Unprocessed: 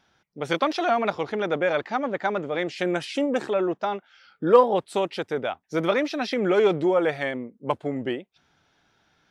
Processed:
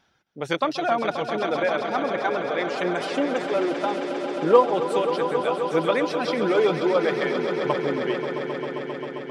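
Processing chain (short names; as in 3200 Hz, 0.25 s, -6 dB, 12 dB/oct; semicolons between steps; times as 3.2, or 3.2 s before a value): reverb removal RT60 1.7 s; swelling echo 0.133 s, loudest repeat 5, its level -11 dB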